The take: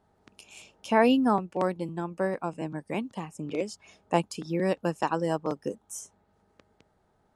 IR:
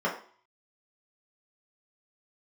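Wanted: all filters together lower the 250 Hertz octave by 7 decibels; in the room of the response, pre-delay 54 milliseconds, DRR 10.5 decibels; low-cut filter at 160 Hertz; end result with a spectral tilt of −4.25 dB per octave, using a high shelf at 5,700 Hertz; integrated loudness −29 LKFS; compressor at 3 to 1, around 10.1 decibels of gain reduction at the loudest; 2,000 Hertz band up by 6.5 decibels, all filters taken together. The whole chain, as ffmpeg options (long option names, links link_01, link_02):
-filter_complex "[0:a]highpass=160,equalizer=frequency=250:width_type=o:gain=-8,equalizer=frequency=2000:width_type=o:gain=8.5,highshelf=frequency=5700:gain=-3,acompressor=threshold=-28dB:ratio=3,asplit=2[link_01][link_02];[1:a]atrim=start_sample=2205,adelay=54[link_03];[link_02][link_03]afir=irnorm=-1:irlink=0,volume=-22dB[link_04];[link_01][link_04]amix=inputs=2:normalize=0,volume=5.5dB"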